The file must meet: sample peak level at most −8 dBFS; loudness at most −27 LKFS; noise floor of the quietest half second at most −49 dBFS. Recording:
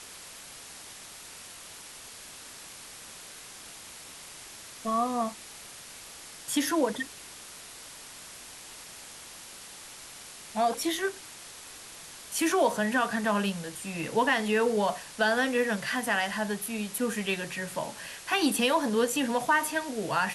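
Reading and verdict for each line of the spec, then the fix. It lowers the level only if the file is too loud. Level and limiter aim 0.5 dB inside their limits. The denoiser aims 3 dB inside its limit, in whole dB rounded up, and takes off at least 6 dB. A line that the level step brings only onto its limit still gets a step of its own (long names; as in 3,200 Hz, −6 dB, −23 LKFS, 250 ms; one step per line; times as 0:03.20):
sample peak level −11.5 dBFS: in spec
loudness −28.5 LKFS: in spec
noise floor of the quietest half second −46 dBFS: out of spec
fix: broadband denoise 6 dB, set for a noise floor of −46 dBFS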